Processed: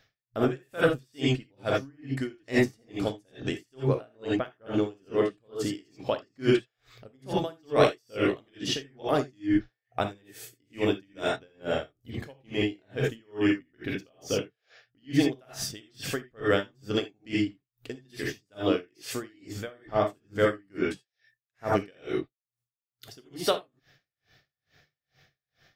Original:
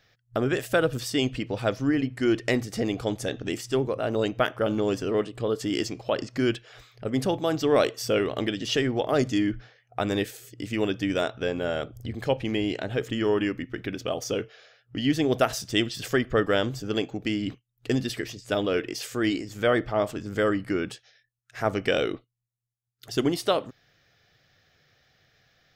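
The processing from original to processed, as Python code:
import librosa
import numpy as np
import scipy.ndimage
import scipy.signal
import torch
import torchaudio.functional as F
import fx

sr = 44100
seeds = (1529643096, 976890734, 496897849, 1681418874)

y = fx.high_shelf(x, sr, hz=7700.0, db=-11.5, at=(4.14, 4.74))
y = fx.rev_gated(y, sr, seeds[0], gate_ms=100, shape='rising', drr_db=-1.5)
y = y * 10.0 ** (-38 * (0.5 - 0.5 * np.cos(2.0 * np.pi * 2.3 * np.arange(len(y)) / sr)) / 20.0)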